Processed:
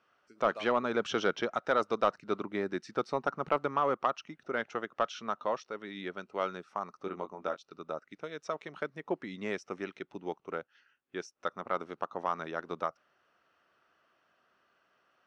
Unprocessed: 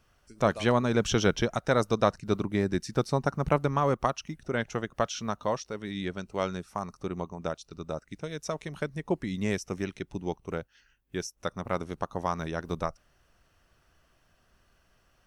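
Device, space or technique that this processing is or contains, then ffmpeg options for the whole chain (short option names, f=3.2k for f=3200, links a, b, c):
intercom: -filter_complex "[0:a]highpass=310,lowpass=3.5k,equalizer=f=1.3k:t=o:w=0.31:g=6,asoftclip=type=tanh:threshold=-12dB,asettb=1/sr,asplit=3[a][b][c];[a]atrim=end=7.024[d];[b]atrim=start=7.02:end=7.59,asetpts=PTS-STARTPTS,afade=t=in:d=0.004:c=qsin,afade=t=out:st=0.566:d=0.004:c=qsin,asplit=2[e][f];[f]adelay=21,volume=-7dB[g];[e][g]amix=inputs=2:normalize=0,atrim=end_sample=25137[h];[c]atrim=start=7.586[i];[d][h]acrossfade=d=0.004:c1=hsin:c2=qsin[j];[j][i]acrossfade=d=0.004:c1=qsin:c2=hsin,volume=-2.5dB"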